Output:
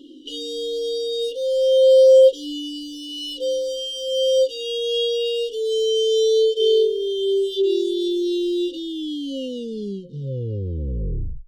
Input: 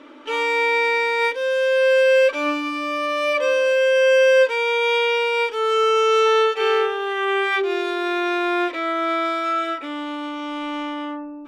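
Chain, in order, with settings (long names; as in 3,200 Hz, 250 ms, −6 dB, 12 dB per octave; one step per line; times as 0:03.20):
turntable brake at the end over 2.60 s
brick-wall band-stop 540–2,800 Hz
flanger whose copies keep moving one way falling 0.24 Hz
level +6.5 dB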